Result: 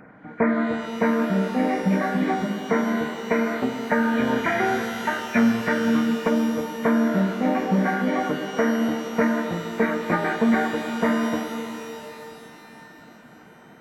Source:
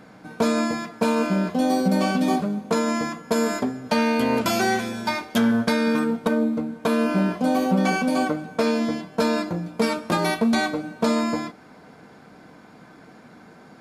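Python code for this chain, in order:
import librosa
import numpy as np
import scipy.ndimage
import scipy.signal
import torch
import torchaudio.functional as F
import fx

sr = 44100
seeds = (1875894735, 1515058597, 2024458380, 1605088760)

y = fx.freq_compress(x, sr, knee_hz=1400.0, ratio=4.0)
y = fx.dereverb_blind(y, sr, rt60_s=0.96)
y = fx.rev_shimmer(y, sr, seeds[0], rt60_s=3.3, semitones=12, shimmer_db=-8, drr_db=5.0)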